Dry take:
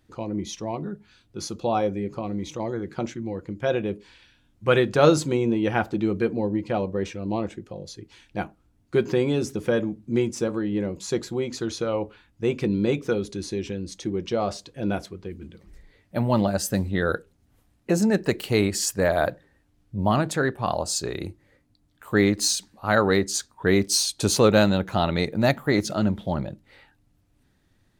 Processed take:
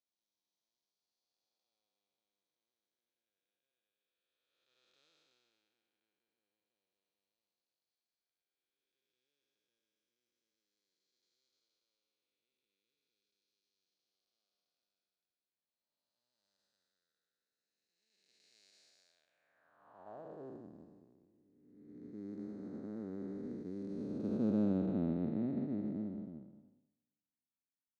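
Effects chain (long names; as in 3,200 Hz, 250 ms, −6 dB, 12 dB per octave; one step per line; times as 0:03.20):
spectrum smeared in time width 894 ms
band-pass filter sweep 4,500 Hz → 250 Hz, 0:19.06–0:20.69
expander for the loud parts 2.5 to 1, over −53 dBFS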